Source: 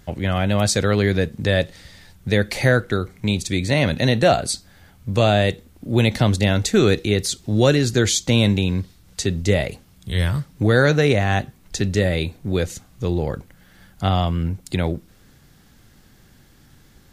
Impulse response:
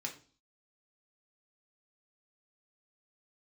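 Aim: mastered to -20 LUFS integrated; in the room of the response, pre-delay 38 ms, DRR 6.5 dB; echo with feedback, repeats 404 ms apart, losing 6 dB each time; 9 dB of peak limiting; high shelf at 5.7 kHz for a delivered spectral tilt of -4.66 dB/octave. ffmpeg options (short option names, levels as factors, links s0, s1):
-filter_complex "[0:a]highshelf=f=5700:g=5.5,alimiter=limit=0.266:level=0:latency=1,aecho=1:1:404|808|1212|1616|2020|2424:0.501|0.251|0.125|0.0626|0.0313|0.0157,asplit=2[s0][s1];[1:a]atrim=start_sample=2205,adelay=38[s2];[s1][s2]afir=irnorm=-1:irlink=0,volume=0.473[s3];[s0][s3]amix=inputs=2:normalize=0,volume=1.26"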